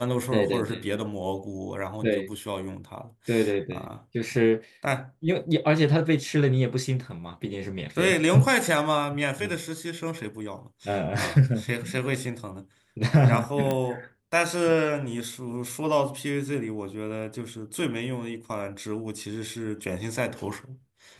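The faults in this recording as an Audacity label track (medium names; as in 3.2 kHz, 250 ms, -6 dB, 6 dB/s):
13.710000	13.710000	pop -14 dBFS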